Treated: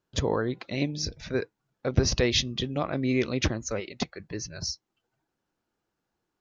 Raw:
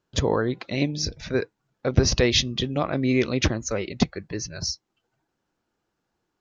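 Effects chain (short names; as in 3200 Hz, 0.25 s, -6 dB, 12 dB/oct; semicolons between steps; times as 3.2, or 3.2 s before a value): 3.8–4.2 low shelf 260 Hz -11.5 dB; gain -4 dB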